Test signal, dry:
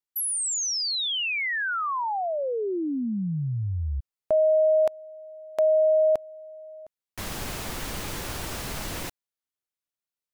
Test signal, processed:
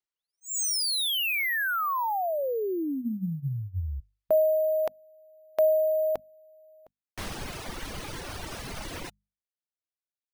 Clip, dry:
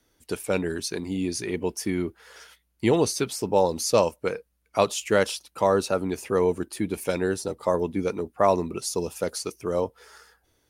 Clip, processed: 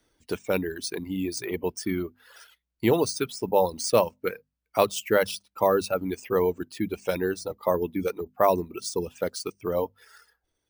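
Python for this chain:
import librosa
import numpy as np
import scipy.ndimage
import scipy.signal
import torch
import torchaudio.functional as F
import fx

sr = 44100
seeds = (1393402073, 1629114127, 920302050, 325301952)

y = fx.hum_notches(x, sr, base_hz=50, count=5)
y = fx.dereverb_blind(y, sr, rt60_s=1.5)
y = np.repeat(scipy.signal.resample_poly(y, 1, 3), 3)[:len(y)]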